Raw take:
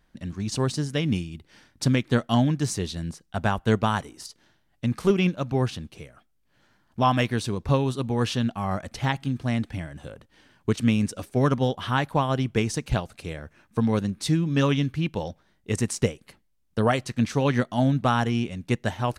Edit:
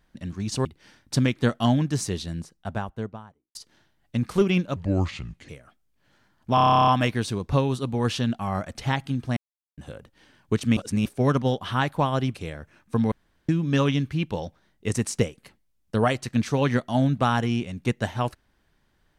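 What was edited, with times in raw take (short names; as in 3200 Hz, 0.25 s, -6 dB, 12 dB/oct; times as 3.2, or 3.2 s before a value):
0.65–1.34 cut
2.82–4.24 studio fade out
5.45–5.98 speed 73%
7.04 stutter 0.03 s, 12 plays
9.53–9.94 mute
10.93–11.22 reverse
12.51–13.18 cut
13.95–14.32 room tone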